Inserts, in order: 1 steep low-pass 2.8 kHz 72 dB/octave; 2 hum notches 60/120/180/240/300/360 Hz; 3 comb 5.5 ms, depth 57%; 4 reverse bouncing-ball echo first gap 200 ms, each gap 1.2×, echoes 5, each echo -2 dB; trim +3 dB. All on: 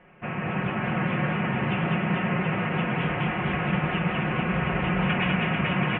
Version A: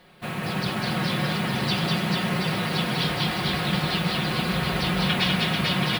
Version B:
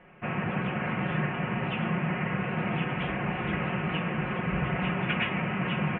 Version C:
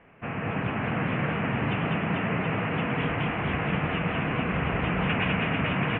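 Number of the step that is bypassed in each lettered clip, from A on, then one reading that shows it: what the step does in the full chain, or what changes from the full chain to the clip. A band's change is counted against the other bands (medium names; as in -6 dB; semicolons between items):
1, crest factor change +2.5 dB; 4, loudness change -4.0 LU; 3, crest factor change +1.5 dB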